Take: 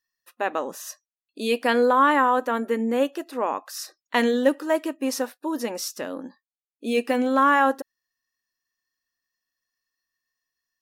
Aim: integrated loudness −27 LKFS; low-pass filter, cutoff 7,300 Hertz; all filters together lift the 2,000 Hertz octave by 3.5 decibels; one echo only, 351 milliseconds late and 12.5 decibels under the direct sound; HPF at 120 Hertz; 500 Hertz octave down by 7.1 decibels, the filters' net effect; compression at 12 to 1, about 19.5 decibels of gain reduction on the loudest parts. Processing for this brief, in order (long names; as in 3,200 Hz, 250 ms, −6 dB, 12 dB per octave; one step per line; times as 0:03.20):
high-pass filter 120 Hz
low-pass filter 7,300 Hz
parametric band 500 Hz −8 dB
parametric band 2,000 Hz +5 dB
downward compressor 12 to 1, threshold −34 dBFS
single-tap delay 351 ms −12.5 dB
level +11.5 dB